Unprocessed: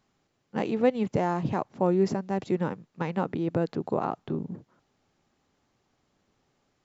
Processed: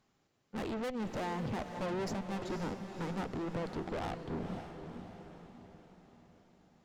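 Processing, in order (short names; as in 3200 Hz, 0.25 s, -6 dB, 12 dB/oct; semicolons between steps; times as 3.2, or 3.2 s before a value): tube stage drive 36 dB, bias 0.65; diffused feedback echo 0.523 s, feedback 50%, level -7.5 dB; gain +1 dB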